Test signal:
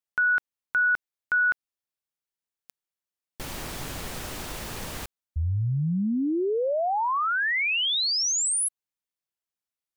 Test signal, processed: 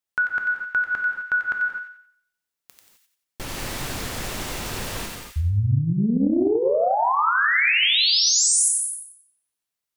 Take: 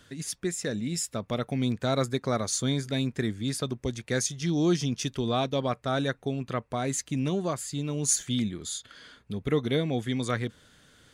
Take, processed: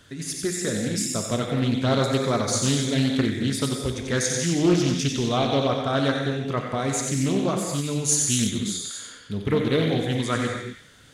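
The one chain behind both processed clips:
delay with a high-pass on its return 91 ms, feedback 37%, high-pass 1,700 Hz, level −4.5 dB
reverb whose tail is shaped and stops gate 280 ms flat, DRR 2 dB
highs frequency-modulated by the lows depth 0.3 ms
level +3 dB

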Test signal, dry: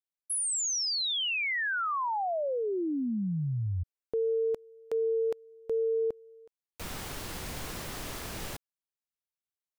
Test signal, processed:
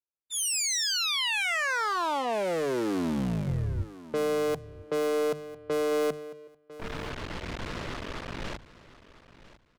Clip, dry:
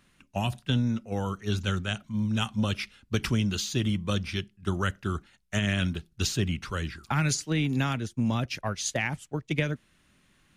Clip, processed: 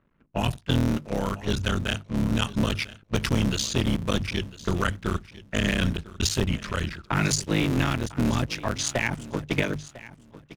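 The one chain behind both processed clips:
sub-harmonics by changed cycles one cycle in 3, muted
notch filter 770 Hz, Q 12
low-pass that shuts in the quiet parts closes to 1,200 Hz, open at −28 dBFS
mains-hum notches 50/100/150 Hz
leveller curve on the samples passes 1
on a send: repeating echo 1,000 ms, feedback 21%, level −17.5 dB
on the sum: level +2 dB

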